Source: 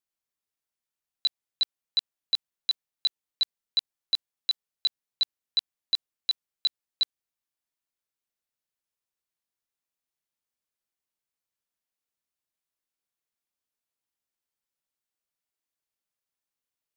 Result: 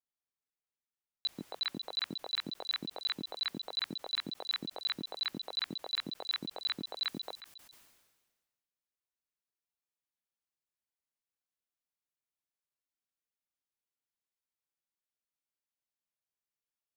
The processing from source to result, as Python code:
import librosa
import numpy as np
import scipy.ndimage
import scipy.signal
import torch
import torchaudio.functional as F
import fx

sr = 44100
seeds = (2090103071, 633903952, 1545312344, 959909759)

y = fx.high_shelf(x, sr, hz=4300.0, db=fx.steps((0.0, -7.0), (7.02, -2.5)))
y = fx.echo_stepped(y, sr, ms=136, hz=230.0, octaves=1.4, feedback_pct=70, wet_db=-10.5)
y = fx.sustainer(y, sr, db_per_s=42.0)
y = y * librosa.db_to_amplitude(-7.0)